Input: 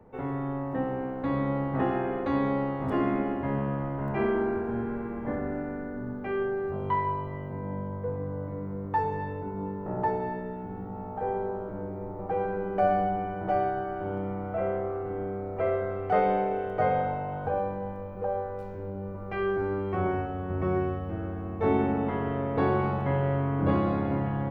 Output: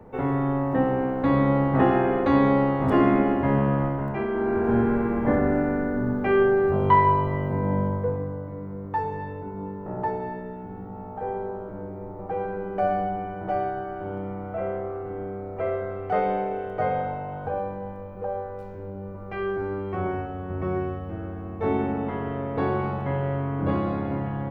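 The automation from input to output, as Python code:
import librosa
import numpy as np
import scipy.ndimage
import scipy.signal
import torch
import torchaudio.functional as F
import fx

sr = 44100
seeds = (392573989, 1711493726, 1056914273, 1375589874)

y = fx.gain(x, sr, db=fx.line((3.85, 7.5), (4.27, -2.0), (4.72, 10.0), (7.86, 10.0), (8.44, 0.0)))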